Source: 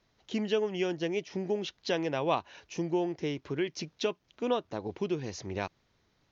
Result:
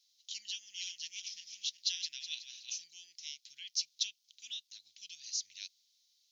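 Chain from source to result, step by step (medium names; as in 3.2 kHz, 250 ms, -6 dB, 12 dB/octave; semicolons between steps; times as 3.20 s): 0.48–2.84 s: backward echo that repeats 185 ms, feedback 46%, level -6 dB; inverse Chebyshev high-pass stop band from 1.2 kHz, stop band 60 dB; trim +9 dB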